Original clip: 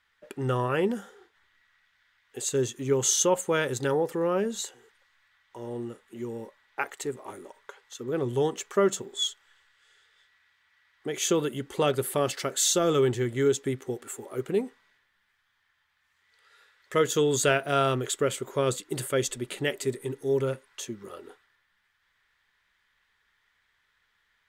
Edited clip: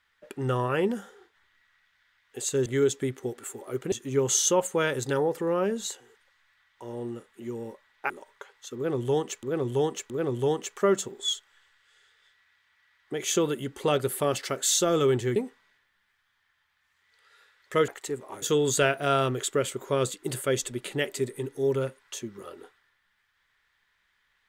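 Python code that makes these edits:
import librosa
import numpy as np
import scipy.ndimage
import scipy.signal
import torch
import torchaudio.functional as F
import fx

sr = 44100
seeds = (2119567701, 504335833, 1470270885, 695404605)

y = fx.edit(x, sr, fx.move(start_s=6.84, length_s=0.54, to_s=17.08),
    fx.repeat(start_s=8.04, length_s=0.67, count=3),
    fx.move(start_s=13.3, length_s=1.26, to_s=2.66), tone=tone)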